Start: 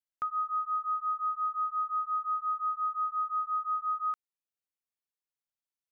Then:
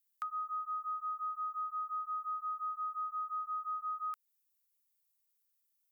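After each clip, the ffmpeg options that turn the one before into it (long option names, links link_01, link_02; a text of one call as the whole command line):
ffmpeg -i in.wav -af "highpass=frequency=960:width=0.5412,highpass=frequency=960:width=1.3066,aemphasis=mode=production:type=75fm,acompressor=threshold=-36dB:ratio=2.5,volume=-2dB" out.wav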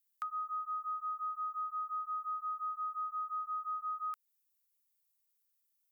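ffmpeg -i in.wav -af anull out.wav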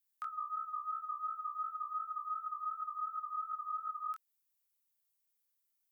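ffmpeg -i in.wav -af "flanger=delay=19.5:depth=6:speed=2.8,volume=1.5dB" out.wav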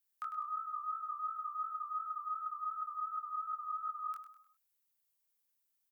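ffmpeg -i in.wav -af "aecho=1:1:101|202|303|404:0.299|0.122|0.0502|0.0206" out.wav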